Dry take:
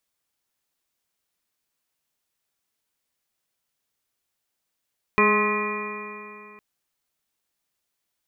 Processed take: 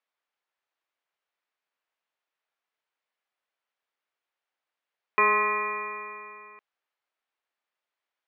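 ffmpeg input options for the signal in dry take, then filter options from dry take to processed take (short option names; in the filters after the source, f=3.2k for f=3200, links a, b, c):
-f lavfi -i "aevalsrc='0.0708*pow(10,-3*t/2.72)*sin(2*PI*208.1*t)+0.1*pow(10,-3*t/2.72)*sin(2*PI*416.83*t)+0.02*pow(10,-3*t/2.72)*sin(2*PI*626.8*t)+0.0178*pow(10,-3*t/2.72)*sin(2*PI*838.63*t)+0.112*pow(10,-3*t/2.72)*sin(2*PI*1052.92*t)+0.0473*pow(10,-3*t/2.72)*sin(2*PI*1270.27*t)+0.01*pow(10,-3*t/2.72)*sin(2*PI*1491.25*t)+0.0178*pow(10,-3*t/2.72)*sin(2*PI*1716.42*t)+0.0631*pow(10,-3*t/2.72)*sin(2*PI*1946.34*t)+0.0112*pow(10,-3*t/2.72)*sin(2*PI*2181.52*t)+0.1*pow(10,-3*t/2.72)*sin(2*PI*2422.47*t)':d=1.41:s=44100"
-af "highpass=540,lowpass=2.5k"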